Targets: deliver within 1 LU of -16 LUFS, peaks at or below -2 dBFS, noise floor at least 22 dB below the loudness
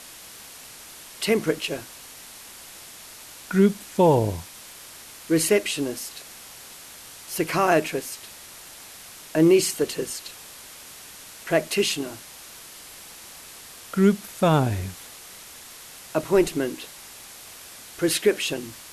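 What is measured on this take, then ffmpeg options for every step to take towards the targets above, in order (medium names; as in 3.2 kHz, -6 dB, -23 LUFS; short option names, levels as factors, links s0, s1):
noise floor -44 dBFS; noise floor target -46 dBFS; loudness -23.5 LUFS; peak level -8.0 dBFS; loudness target -16.0 LUFS
-> -af "afftdn=nr=6:nf=-44"
-af "volume=2.37,alimiter=limit=0.794:level=0:latency=1"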